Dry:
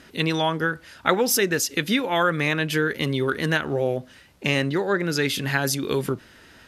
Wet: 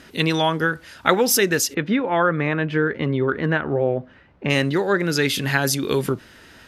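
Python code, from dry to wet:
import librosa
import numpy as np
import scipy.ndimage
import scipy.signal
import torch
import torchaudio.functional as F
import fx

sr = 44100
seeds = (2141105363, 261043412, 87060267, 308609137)

y = fx.lowpass(x, sr, hz=1700.0, slope=12, at=(1.73, 4.49), fade=0.02)
y = y * librosa.db_to_amplitude(3.0)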